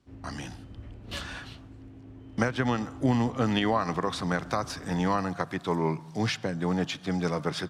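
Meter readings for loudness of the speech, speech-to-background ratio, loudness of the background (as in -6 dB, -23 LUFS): -29.0 LUFS, 17.0 dB, -46.0 LUFS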